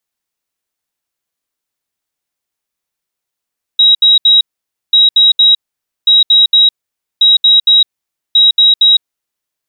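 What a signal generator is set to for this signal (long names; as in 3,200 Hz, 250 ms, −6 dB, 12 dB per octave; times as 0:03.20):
beeps in groups sine 3,830 Hz, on 0.16 s, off 0.07 s, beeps 3, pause 0.52 s, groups 5, −3.5 dBFS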